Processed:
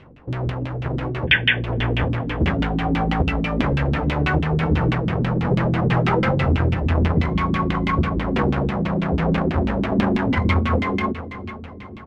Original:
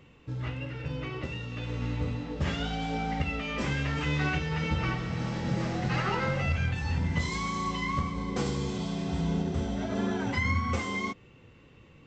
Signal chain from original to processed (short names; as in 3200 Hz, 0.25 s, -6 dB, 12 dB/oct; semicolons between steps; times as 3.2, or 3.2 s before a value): half-waves squared off; de-hum 146 Hz, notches 39; painted sound noise, 1.27–1.64, 1500–3600 Hz -22 dBFS; feedback echo 0.45 s, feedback 56%, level -13 dB; LFO low-pass saw down 6.1 Hz 210–3200 Hz; gain +4 dB